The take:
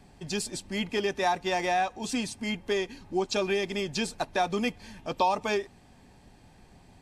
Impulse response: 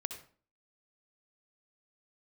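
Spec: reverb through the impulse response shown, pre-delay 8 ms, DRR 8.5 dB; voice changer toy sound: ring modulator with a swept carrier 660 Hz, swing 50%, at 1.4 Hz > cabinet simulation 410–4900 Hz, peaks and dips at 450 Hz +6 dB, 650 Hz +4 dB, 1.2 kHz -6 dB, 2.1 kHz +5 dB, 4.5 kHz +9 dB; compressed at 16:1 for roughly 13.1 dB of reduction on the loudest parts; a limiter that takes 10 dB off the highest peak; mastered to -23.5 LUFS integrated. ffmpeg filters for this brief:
-filter_complex "[0:a]acompressor=threshold=0.02:ratio=16,alimiter=level_in=2.51:limit=0.0631:level=0:latency=1,volume=0.398,asplit=2[s0][s1];[1:a]atrim=start_sample=2205,adelay=8[s2];[s1][s2]afir=irnorm=-1:irlink=0,volume=0.376[s3];[s0][s3]amix=inputs=2:normalize=0,aeval=exprs='val(0)*sin(2*PI*660*n/s+660*0.5/1.4*sin(2*PI*1.4*n/s))':c=same,highpass=410,equalizer=f=450:t=q:w=4:g=6,equalizer=f=650:t=q:w=4:g=4,equalizer=f=1200:t=q:w=4:g=-6,equalizer=f=2100:t=q:w=4:g=5,equalizer=f=4500:t=q:w=4:g=9,lowpass=f=4900:w=0.5412,lowpass=f=4900:w=1.3066,volume=10.6"

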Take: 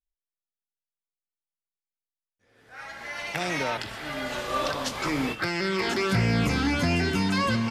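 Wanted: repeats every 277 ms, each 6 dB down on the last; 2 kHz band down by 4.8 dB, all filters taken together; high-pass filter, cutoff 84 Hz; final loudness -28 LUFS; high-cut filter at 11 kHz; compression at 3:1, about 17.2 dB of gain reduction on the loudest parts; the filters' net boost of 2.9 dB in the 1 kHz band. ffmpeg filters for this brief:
-af "highpass=84,lowpass=11000,equalizer=f=1000:t=o:g=6,equalizer=f=2000:t=o:g=-8.5,acompressor=threshold=0.00562:ratio=3,aecho=1:1:277|554|831|1108|1385|1662:0.501|0.251|0.125|0.0626|0.0313|0.0157,volume=4.73"

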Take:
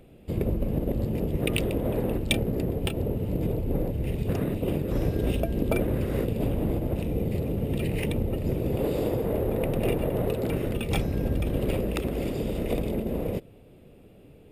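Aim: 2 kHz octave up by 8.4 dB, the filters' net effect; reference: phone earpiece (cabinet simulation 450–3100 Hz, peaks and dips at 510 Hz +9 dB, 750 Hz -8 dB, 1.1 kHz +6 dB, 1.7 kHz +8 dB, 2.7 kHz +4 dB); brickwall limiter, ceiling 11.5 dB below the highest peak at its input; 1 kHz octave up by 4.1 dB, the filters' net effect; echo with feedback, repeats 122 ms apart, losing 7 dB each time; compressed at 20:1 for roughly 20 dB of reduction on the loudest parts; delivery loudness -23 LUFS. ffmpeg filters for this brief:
-af "equalizer=f=1000:t=o:g=5,equalizer=f=2000:t=o:g=5,acompressor=threshold=0.0112:ratio=20,alimiter=level_in=3.55:limit=0.0631:level=0:latency=1,volume=0.282,highpass=450,equalizer=f=510:t=q:w=4:g=9,equalizer=f=750:t=q:w=4:g=-8,equalizer=f=1100:t=q:w=4:g=6,equalizer=f=1700:t=q:w=4:g=8,equalizer=f=2700:t=q:w=4:g=4,lowpass=f=3100:w=0.5412,lowpass=f=3100:w=1.3066,aecho=1:1:122|244|366|488|610:0.447|0.201|0.0905|0.0407|0.0183,volume=14.1"

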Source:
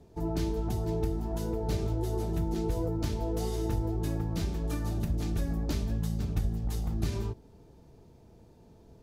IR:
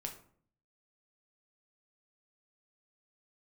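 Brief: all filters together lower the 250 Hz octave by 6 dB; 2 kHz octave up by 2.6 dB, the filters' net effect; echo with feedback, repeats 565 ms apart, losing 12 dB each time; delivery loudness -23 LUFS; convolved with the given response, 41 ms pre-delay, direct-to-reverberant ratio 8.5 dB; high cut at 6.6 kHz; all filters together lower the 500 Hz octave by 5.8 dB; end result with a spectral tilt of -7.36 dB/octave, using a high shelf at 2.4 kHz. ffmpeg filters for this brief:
-filter_complex "[0:a]lowpass=6600,equalizer=f=250:t=o:g=-8,equalizer=f=500:t=o:g=-4.5,equalizer=f=2000:t=o:g=7,highshelf=f=2400:g=-7,aecho=1:1:565|1130|1695:0.251|0.0628|0.0157,asplit=2[s0][s1];[1:a]atrim=start_sample=2205,adelay=41[s2];[s1][s2]afir=irnorm=-1:irlink=0,volume=0.447[s3];[s0][s3]amix=inputs=2:normalize=0,volume=3.55"

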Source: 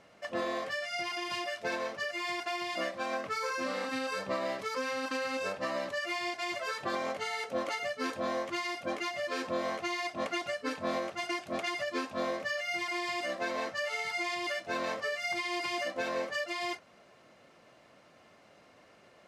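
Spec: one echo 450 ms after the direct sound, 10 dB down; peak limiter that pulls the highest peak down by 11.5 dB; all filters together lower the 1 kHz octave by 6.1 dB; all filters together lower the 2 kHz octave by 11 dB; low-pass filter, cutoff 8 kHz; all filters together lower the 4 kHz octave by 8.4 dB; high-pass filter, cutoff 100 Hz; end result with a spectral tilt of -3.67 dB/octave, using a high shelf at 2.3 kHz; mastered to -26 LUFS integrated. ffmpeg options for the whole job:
-af "highpass=100,lowpass=8000,equalizer=f=1000:t=o:g=-5,equalizer=f=2000:t=o:g=-9,highshelf=f=2300:g=-3.5,equalizer=f=4000:t=o:g=-4,alimiter=level_in=3.35:limit=0.0631:level=0:latency=1,volume=0.299,aecho=1:1:450:0.316,volume=6.68"

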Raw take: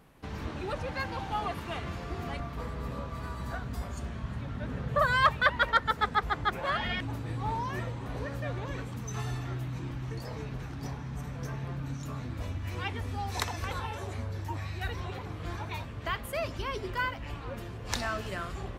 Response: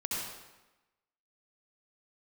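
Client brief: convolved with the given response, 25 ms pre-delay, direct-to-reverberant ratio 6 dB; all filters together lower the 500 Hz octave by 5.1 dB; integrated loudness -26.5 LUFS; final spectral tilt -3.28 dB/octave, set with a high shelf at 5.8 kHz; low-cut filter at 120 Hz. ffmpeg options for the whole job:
-filter_complex "[0:a]highpass=120,equalizer=f=500:t=o:g=-6.5,highshelf=f=5800:g=-7.5,asplit=2[s0][s1];[1:a]atrim=start_sample=2205,adelay=25[s2];[s1][s2]afir=irnorm=-1:irlink=0,volume=0.299[s3];[s0][s3]amix=inputs=2:normalize=0,volume=2.51"

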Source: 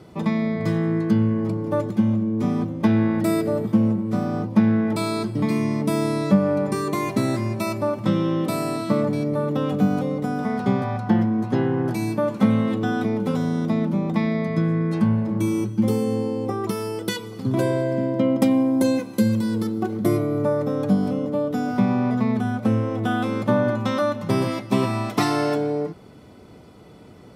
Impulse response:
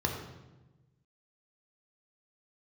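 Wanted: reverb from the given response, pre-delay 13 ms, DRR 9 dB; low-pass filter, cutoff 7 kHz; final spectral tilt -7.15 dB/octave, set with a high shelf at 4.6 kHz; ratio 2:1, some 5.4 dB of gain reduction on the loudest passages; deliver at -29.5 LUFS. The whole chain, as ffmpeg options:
-filter_complex "[0:a]lowpass=7000,highshelf=f=4600:g=8.5,acompressor=threshold=0.0794:ratio=2,asplit=2[s0][s1];[1:a]atrim=start_sample=2205,adelay=13[s2];[s1][s2]afir=irnorm=-1:irlink=0,volume=0.15[s3];[s0][s3]amix=inputs=2:normalize=0,volume=0.501"

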